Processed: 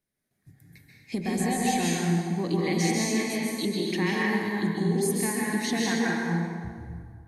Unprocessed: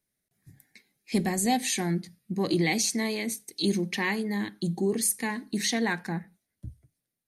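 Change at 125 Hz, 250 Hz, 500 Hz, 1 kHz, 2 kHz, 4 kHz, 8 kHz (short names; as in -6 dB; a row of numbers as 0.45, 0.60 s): +4.0, +2.5, +2.0, +2.5, +2.0, -1.0, -2.0 dB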